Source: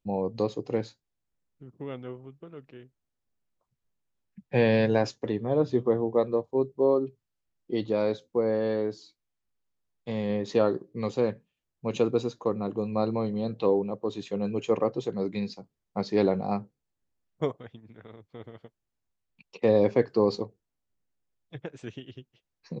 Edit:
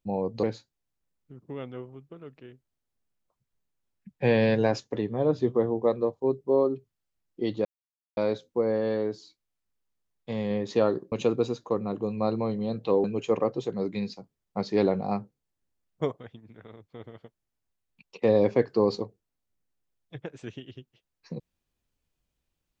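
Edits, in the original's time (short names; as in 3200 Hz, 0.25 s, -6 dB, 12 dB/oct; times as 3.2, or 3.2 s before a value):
0.43–0.74 cut
7.96 insert silence 0.52 s
10.91–11.87 cut
13.79–14.44 cut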